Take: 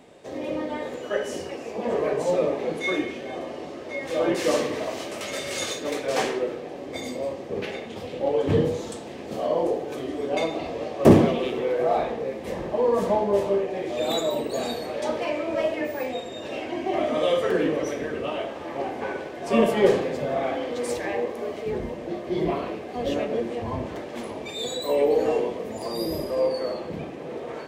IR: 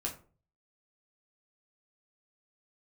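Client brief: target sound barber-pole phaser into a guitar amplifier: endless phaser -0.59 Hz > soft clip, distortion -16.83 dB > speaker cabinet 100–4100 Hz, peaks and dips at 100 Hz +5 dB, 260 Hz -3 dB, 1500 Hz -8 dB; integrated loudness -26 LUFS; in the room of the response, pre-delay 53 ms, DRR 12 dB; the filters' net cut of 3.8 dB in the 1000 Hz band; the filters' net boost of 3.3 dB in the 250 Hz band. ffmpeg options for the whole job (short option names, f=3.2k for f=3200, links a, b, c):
-filter_complex "[0:a]equalizer=f=250:t=o:g=6.5,equalizer=f=1k:t=o:g=-5.5,asplit=2[a][b];[1:a]atrim=start_sample=2205,adelay=53[c];[b][c]afir=irnorm=-1:irlink=0,volume=-13.5dB[d];[a][d]amix=inputs=2:normalize=0,asplit=2[e][f];[f]afreqshift=-0.59[g];[e][g]amix=inputs=2:normalize=1,asoftclip=threshold=-11dB,highpass=100,equalizer=f=100:t=q:w=4:g=5,equalizer=f=260:t=q:w=4:g=-3,equalizer=f=1.5k:t=q:w=4:g=-8,lowpass=f=4.1k:w=0.5412,lowpass=f=4.1k:w=1.3066,volume=3.5dB"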